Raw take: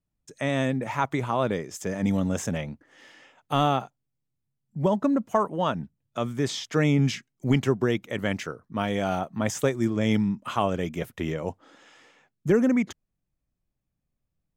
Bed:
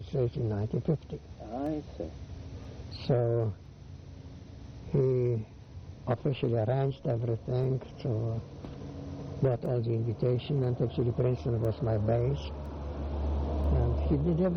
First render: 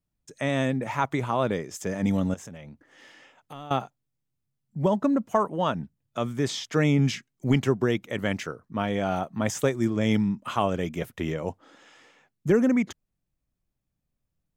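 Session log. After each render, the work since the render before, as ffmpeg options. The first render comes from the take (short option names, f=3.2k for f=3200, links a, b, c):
-filter_complex "[0:a]asettb=1/sr,asplit=3[a][b][c];[a]atrim=end=2.344[d];[b]atrim=start=2.34:end=3.71,asetpts=PTS-STARTPTS,afade=t=in:d=0.004:c=qsin,afade=t=out:st=1.366:d=0.004:c=qsin,acompressor=threshold=-43dB:ratio=3:attack=3.2:release=140:knee=1:detection=peak[e];[c]atrim=start=3.706[f];[d][e]acrossfade=d=0.004:c1=hsin:c2=qsin[g];[g][f]acrossfade=d=0.004:c1=qsin:c2=hsin,asettb=1/sr,asplit=3[h][i][j];[h]atrim=end=8.764[k];[i]atrim=start=8.76:end=9.16,asetpts=PTS-STARTPTS,afade=t=in:d=0.004:c=qsin,afade=t=out:st=0.396:d=0.004:c=qsin,highshelf=f=5k:g=-8[l];[j]atrim=start=9.156[m];[k][l]acrossfade=d=0.004:c1=hsin:c2=qsin[n];[n][m]acrossfade=d=0.004:c1=qsin:c2=hsin"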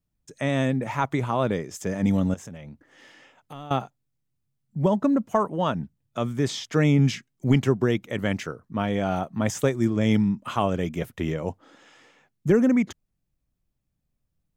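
-af "lowshelf=f=270:g=4"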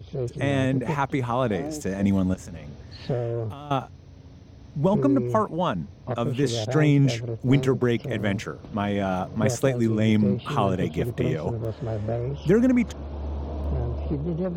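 -filter_complex "[1:a]volume=0dB[a];[0:a][a]amix=inputs=2:normalize=0"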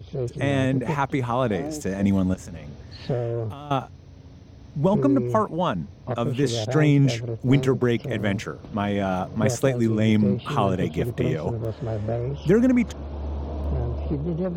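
-af "volume=1dB"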